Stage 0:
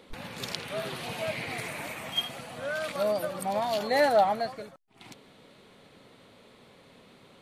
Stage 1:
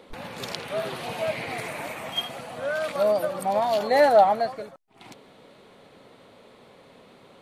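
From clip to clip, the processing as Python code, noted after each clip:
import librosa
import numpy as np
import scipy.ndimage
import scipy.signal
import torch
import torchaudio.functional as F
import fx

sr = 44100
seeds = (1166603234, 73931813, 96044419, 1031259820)

y = fx.peak_eq(x, sr, hz=660.0, db=6.0, octaves=2.3)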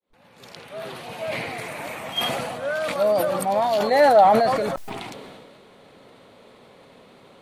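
y = fx.fade_in_head(x, sr, length_s=2.03)
y = fx.sustainer(y, sr, db_per_s=28.0)
y = y * 10.0 ** (1.5 / 20.0)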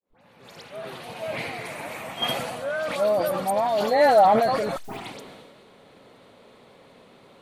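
y = fx.dispersion(x, sr, late='highs', ms=79.0, hz=2700.0)
y = y * 10.0 ** (-2.0 / 20.0)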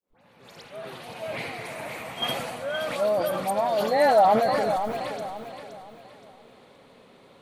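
y = fx.echo_feedback(x, sr, ms=521, feedback_pct=35, wet_db=-9.0)
y = y * 10.0 ** (-2.0 / 20.0)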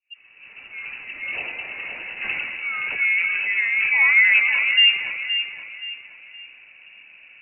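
y = fx.tilt_eq(x, sr, slope=-4.0)
y = fx.freq_invert(y, sr, carrier_hz=2800)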